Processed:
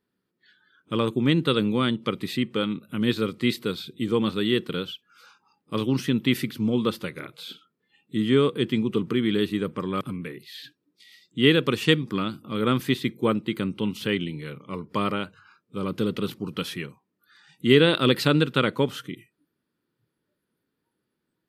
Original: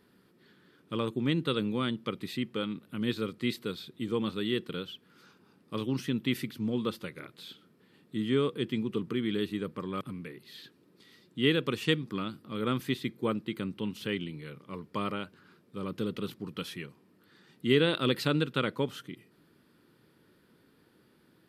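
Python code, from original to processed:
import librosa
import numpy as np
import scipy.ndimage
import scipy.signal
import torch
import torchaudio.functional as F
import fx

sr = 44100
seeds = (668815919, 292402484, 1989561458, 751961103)

y = fx.noise_reduce_blind(x, sr, reduce_db=23)
y = F.gain(torch.from_numpy(y), 7.5).numpy()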